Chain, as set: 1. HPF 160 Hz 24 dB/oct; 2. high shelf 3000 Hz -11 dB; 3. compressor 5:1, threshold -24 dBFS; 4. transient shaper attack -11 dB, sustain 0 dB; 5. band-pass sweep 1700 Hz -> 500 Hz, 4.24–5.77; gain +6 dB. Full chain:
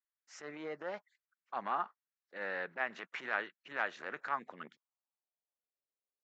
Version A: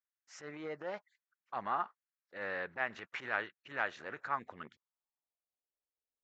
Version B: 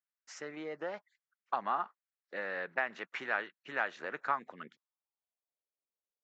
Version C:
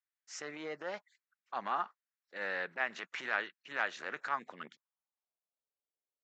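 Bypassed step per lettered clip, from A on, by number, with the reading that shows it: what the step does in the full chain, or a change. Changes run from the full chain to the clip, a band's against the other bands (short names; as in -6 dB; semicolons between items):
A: 1, 125 Hz band +4.5 dB; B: 4, loudness change +2.0 LU; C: 2, 4 kHz band +5.0 dB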